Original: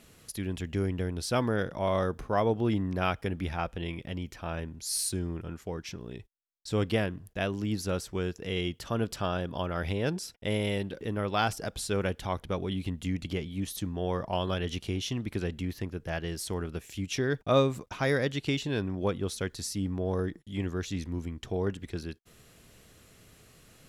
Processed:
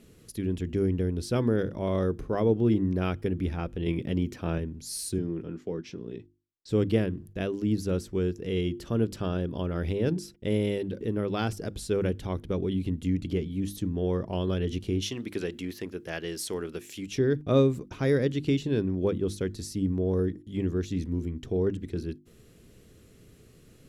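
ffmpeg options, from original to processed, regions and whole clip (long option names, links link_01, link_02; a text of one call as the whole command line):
ffmpeg -i in.wav -filter_complex "[0:a]asettb=1/sr,asplit=3[link_01][link_02][link_03];[link_01]atrim=end=3.864[link_04];[link_02]atrim=start=3.86:end=4.58,asetpts=PTS-STARTPTS,afade=type=in:duration=0.004:curve=qsin,afade=type=out:start_time=0.716:duration=0.004:curve=qsin,highpass=91,acontrast=33[link_05];[link_03]atrim=start=4.576[link_06];[link_04][link_05]acrossfade=duration=0.004:curve1=hsin:curve2=qsin[link_07];[link_07][link_06]acrossfade=duration=0.004:curve1=qsin:curve2=hsin,asettb=1/sr,asplit=3[link_08][link_09][link_10];[link_08]atrim=end=5.184[link_11];[link_09]atrim=start=5.18:end=6.69,asetpts=PTS-STARTPTS,afade=type=in:duration=0.004:curve=qsin,afade=type=out:start_time=1.506:duration=0.004:curve=qsin,acrossover=split=150 6600:gain=0.224 1 0.158[link_12][link_13][link_14];[link_12][link_13][link_14]amix=inputs=3:normalize=0,asplit=2[link_15][link_16];[link_16]adelay=18,volume=-13dB[link_17];[link_15][link_17]amix=inputs=2:normalize=0,atrim=end_sample=66591[link_18];[link_10]atrim=start=6.686[link_19];[link_11][link_18]acrossfade=duration=0.004:curve1=hsin:curve2=qsin[link_20];[link_20][link_19]acrossfade=duration=0.004:curve1=qsin:curve2=hsin,asettb=1/sr,asplit=3[link_21][link_22][link_23];[link_21]atrim=end=15.024[link_24];[link_22]atrim=start=15.02:end=17.08,asetpts=PTS-STARTPTS,afade=type=in:duration=0.004:curve=qsin,afade=type=out:start_time=2.056:duration=0.004:curve=qsin,highpass=frequency=980:poles=1,acontrast=78[link_25];[link_23]atrim=start=17.076[link_26];[link_24][link_25]acrossfade=duration=0.004:curve1=hsin:curve2=qsin[link_27];[link_27][link_26]acrossfade=duration=0.004:curve1=qsin:curve2=hsin,lowshelf=frequency=540:width_type=q:width=1.5:gain=8.5,bandreject=frequency=50:width_type=h:width=6,bandreject=frequency=100:width_type=h:width=6,bandreject=frequency=150:width_type=h:width=6,bandreject=frequency=200:width_type=h:width=6,bandreject=frequency=250:width_type=h:width=6,bandreject=frequency=300:width_type=h:width=6,bandreject=frequency=350:width_type=h:width=6,volume=-4.5dB" out.wav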